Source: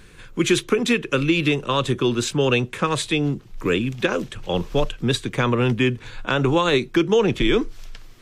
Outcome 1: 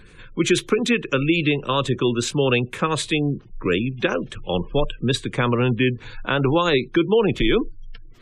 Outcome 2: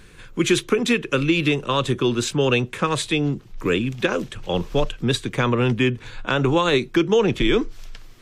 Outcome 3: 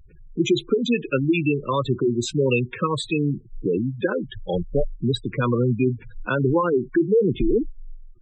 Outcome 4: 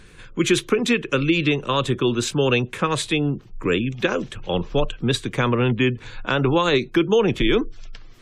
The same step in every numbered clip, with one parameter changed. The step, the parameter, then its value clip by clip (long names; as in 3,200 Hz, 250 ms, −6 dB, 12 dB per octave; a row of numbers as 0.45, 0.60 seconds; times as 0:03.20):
gate on every frequency bin, under each frame's peak: −30, −60, −10, −40 decibels